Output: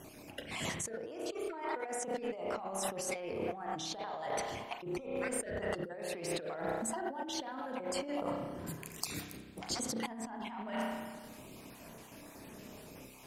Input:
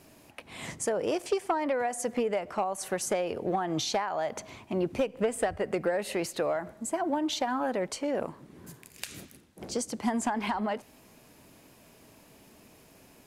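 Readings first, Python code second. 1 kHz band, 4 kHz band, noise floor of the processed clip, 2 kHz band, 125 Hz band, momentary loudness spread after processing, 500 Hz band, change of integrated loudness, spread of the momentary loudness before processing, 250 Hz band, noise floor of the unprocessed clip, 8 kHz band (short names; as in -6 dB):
-8.0 dB, -4.5 dB, -53 dBFS, -5.0 dB, -5.0 dB, 14 LU, -8.5 dB, -8.0 dB, 12 LU, -8.0 dB, -57 dBFS, -3.5 dB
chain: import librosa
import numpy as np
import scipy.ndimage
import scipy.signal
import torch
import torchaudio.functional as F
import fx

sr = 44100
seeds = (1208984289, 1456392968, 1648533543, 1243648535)

y = fx.spec_dropout(x, sr, seeds[0], share_pct=31)
y = fx.rev_spring(y, sr, rt60_s=1.3, pass_ms=(31,), chirp_ms=25, drr_db=4.0)
y = fx.over_compress(y, sr, threshold_db=-38.0, ratio=-1.0)
y = y * 10.0 ** (-1.5 / 20.0)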